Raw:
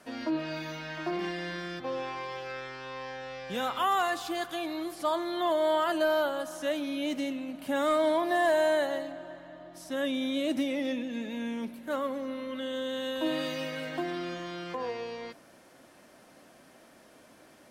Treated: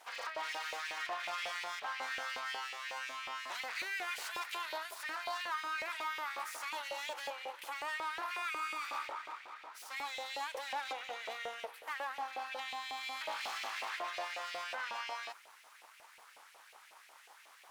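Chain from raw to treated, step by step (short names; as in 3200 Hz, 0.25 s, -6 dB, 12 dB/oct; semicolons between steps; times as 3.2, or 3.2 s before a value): limiter -29 dBFS, peak gain reduction 11 dB; full-wave rectifier; LFO high-pass saw up 5.5 Hz 570–2600 Hz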